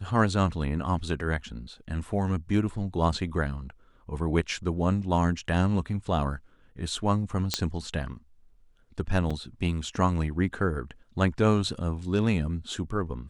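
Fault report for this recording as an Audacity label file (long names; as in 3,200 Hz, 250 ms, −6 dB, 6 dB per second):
7.540000	7.540000	click −9 dBFS
9.300000	9.310000	drop-out 5.4 ms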